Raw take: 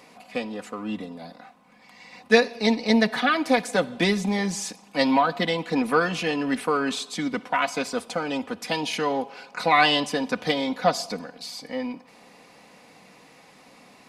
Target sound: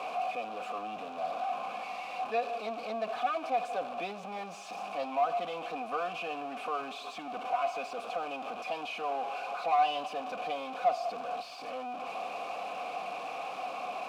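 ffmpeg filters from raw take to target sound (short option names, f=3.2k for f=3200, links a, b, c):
-filter_complex "[0:a]aeval=exprs='val(0)+0.5*0.141*sgn(val(0))':c=same,asplit=3[a][b][c];[a]bandpass=f=730:t=q:w=8,volume=0dB[d];[b]bandpass=f=1.09k:t=q:w=8,volume=-6dB[e];[c]bandpass=f=2.44k:t=q:w=8,volume=-9dB[f];[d][e][f]amix=inputs=3:normalize=0,asplit=2[g][h];[h]asoftclip=type=tanh:threshold=-21dB,volume=-4dB[i];[g][i]amix=inputs=2:normalize=0,volume=-8.5dB"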